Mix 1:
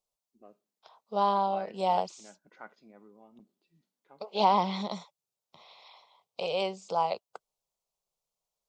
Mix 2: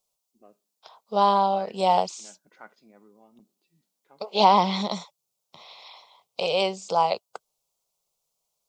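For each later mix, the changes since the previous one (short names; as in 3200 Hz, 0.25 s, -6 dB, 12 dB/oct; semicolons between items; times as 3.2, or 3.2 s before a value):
second voice +6.0 dB; master: add high shelf 4000 Hz +6.5 dB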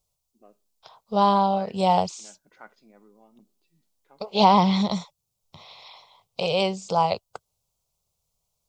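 second voice: remove HPF 280 Hz 12 dB/oct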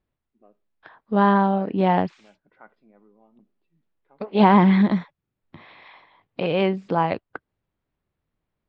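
second voice: remove fixed phaser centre 710 Hz, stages 4; master: add air absorption 470 m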